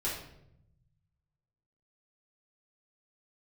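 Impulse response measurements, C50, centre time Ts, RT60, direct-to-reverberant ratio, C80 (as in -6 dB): 3.5 dB, 45 ms, 0.75 s, -8.0 dB, 7.0 dB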